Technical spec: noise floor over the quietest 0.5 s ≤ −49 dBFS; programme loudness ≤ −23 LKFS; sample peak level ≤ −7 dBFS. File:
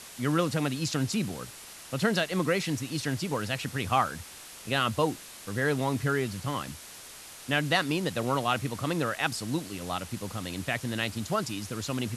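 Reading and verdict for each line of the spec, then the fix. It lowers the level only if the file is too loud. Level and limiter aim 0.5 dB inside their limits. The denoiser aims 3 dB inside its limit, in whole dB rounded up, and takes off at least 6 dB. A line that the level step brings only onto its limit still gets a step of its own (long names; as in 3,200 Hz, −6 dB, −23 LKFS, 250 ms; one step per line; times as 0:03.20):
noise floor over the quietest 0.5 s −46 dBFS: out of spec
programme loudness −30.0 LKFS: in spec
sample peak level −11.0 dBFS: in spec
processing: broadband denoise 6 dB, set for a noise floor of −46 dBFS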